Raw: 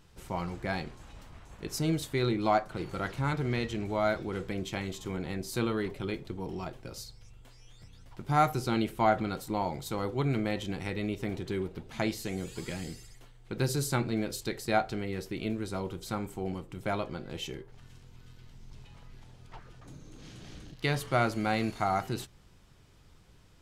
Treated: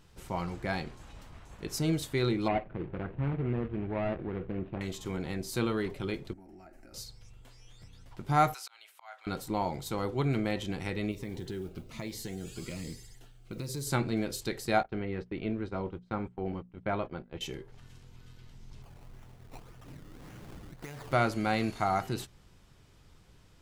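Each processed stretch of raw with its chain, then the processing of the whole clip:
2.48–4.81 s: median filter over 41 samples + low-pass 2.8 kHz 24 dB/octave
6.33–6.94 s: compression 8:1, threshold -45 dBFS + static phaser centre 690 Hz, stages 8
8.54–9.27 s: Bessel high-pass 1.2 kHz, order 6 + slow attack 599 ms
11.11–13.87 s: compression 5:1, threshold -33 dBFS + modulation noise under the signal 30 dB + Shepard-style phaser falling 1.2 Hz
14.83–17.41 s: gate -40 dBFS, range -23 dB + low-pass 2.5 kHz + hum notches 60/120/180/240 Hz
18.82–21.13 s: decimation with a swept rate 19× 1.8 Hz + compression 8:1, threshold -39 dBFS
whole clip: none

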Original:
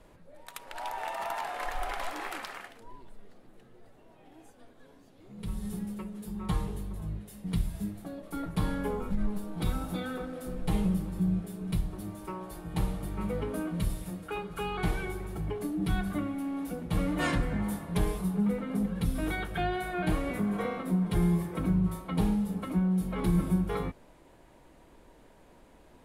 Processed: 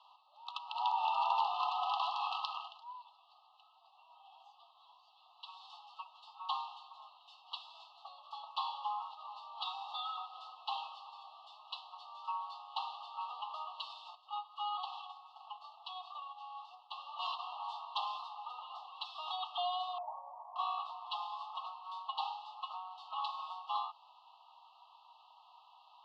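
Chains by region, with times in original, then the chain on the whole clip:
14.15–17.39 s: gate -35 dBFS, range -8 dB + compression 2.5:1, threshold -34 dBFS
19.98–20.56 s: Chebyshev low-pass 900 Hz, order 5 + comb 1.9 ms, depth 54%
whole clip: steep high-pass 770 Hz 72 dB/octave; FFT band-reject 1.3–2.6 kHz; elliptic low-pass 4.4 kHz, stop band 80 dB; trim +5.5 dB

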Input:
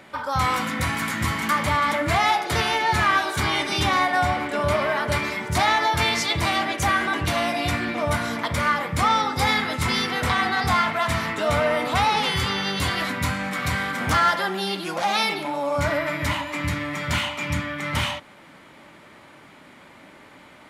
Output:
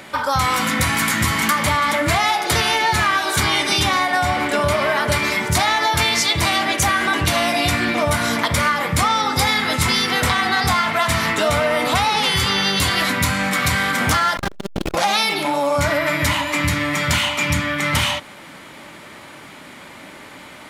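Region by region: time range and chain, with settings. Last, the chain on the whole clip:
14.37–14.95 s: one-bit comparator + RIAA curve playback + transformer saturation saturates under 350 Hz
whole clip: treble shelf 3.5 kHz +7.5 dB; compression, threshold -22 dBFS; trim +7.5 dB

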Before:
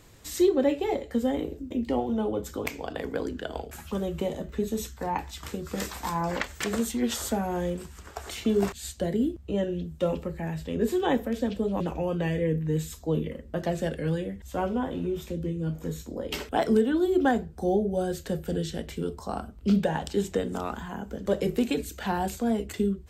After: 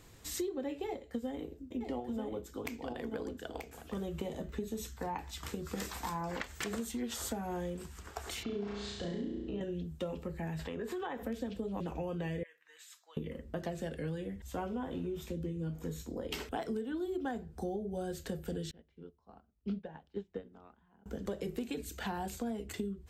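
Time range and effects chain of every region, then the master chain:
0.87–3.97 s: delay 935 ms -7 dB + upward expansion, over -38 dBFS
8.43–9.61 s: low-pass 5 kHz 24 dB/octave + compression 2:1, threshold -36 dBFS + flutter echo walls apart 5.9 m, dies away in 1 s
10.59–11.23 s: peaking EQ 1.2 kHz +14.5 dB 2.5 oct + compression 4:1, threshold -33 dBFS
12.43–13.17 s: ladder high-pass 1.1 kHz, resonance 30% + treble shelf 9.4 kHz -10 dB
18.71–21.06 s: distance through air 220 m + upward expansion 2.5:1, over -37 dBFS
whole clip: band-stop 580 Hz, Q 14; compression 6:1, threshold -31 dBFS; trim -3.5 dB

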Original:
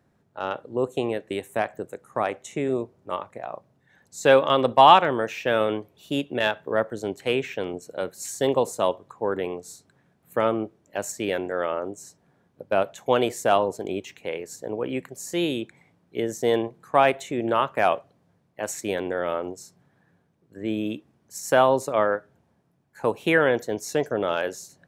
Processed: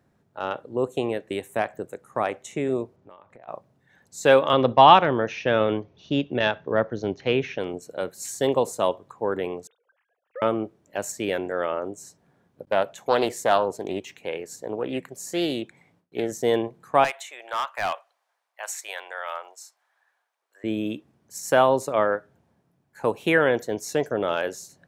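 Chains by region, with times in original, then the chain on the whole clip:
2.96–3.48 s: distance through air 91 m + compression, threshold -45 dBFS
4.53–7.58 s: steep low-pass 6.4 kHz 96 dB/octave + bass shelf 200 Hz +7.5 dB
9.67–10.42 s: formants replaced by sine waves + compression 3:1, threshold -37 dBFS
12.65–16.32 s: gate with hold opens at -53 dBFS, closes at -59 dBFS + peaking EQ 63 Hz -4 dB 1.6 oct + loudspeaker Doppler distortion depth 0.18 ms
17.04–20.64 s: high-pass 780 Hz 24 dB/octave + overload inside the chain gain 20.5 dB
whole clip: none

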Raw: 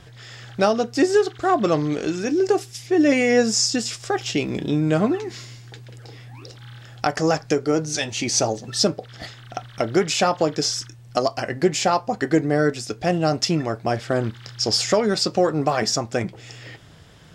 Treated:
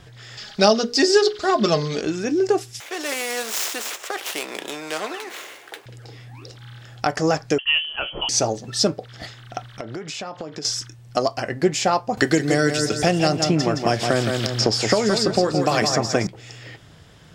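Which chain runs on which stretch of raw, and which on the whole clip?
0.37–2.01 s: peaking EQ 4.7 kHz +13 dB 0.82 oct + hum notches 60/120/180/240/300/360/420/480/540/600 Hz + comb 4.8 ms, depth 60%
2.80–5.86 s: median filter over 9 samples + high-pass 420 Hz 24 dB/octave + spectrum-flattening compressor 2:1
7.58–8.29 s: expander -33 dBFS + frequency inversion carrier 3.2 kHz
9.77–10.65 s: high-pass 110 Hz + treble shelf 8.5 kHz -10 dB + compression 8:1, threshold -28 dBFS
12.17–16.27 s: feedback delay 167 ms, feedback 31%, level -7.5 dB + three bands compressed up and down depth 100%
whole clip: none

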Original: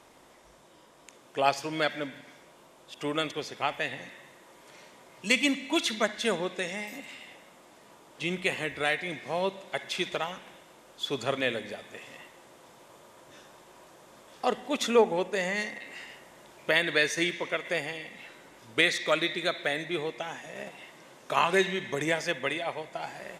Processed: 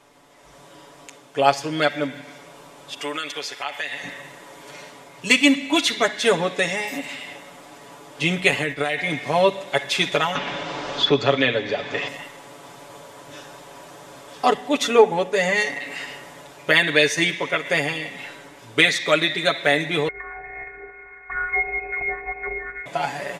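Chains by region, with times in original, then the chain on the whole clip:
3.01–4.04 s: high-pass 1.3 kHz 6 dB/octave + compression 3:1, threshold -37 dBFS
8.51–9.13 s: expander -37 dBFS + compression 10:1, threshold -29 dBFS
10.35–12.08 s: low-pass 5.4 kHz 24 dB/octave + three bands compressed up and down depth 70%
20.08–22.86 s: compression 2:1, threshold -40 dBFS + robot voice 349 Hz + frequency inversion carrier 2.5 kHz
whole clip: treble shelf 12 kHz -4 dB; comb 7 ms, depth 76%; level rider gain up to 10 dB

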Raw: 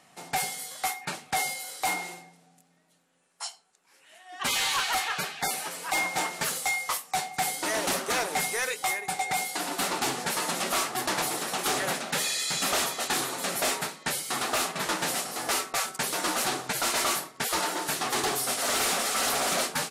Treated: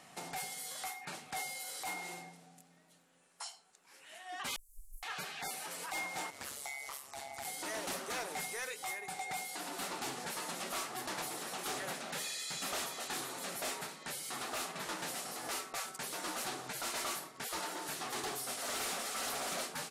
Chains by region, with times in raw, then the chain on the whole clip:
4.56–5.03 s: comb filter that takes the minimum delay 4.1 ms + inverse Chebyshev band-stop 150–3700 Hz, stop band 70 dB + distance through air 75 m
6.30–7.45 s: compression 2.5:1, threshold -41 dBFS + ring modulator 69 Hz
whole clip: compression 3:1, threshold -41 dBFS; peak limiter -34.5 dBFS; trim +1 dB

